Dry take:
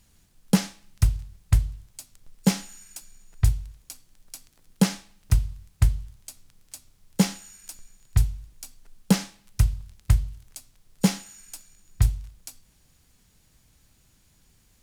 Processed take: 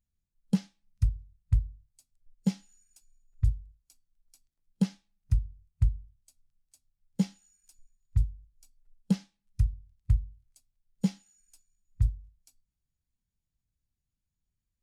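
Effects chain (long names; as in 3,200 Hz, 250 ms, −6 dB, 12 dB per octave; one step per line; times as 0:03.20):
dynamic equaliser 3,500 Hz, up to +4 dB, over −46 dBFS, Q 1
in parallel at −1 dB: downward compressor, threshold −30 dBFS, peak gain reduction 16.5 dB
on the sum: every bin expanded away from the loudest bin 1.5 to 1
level −9 dB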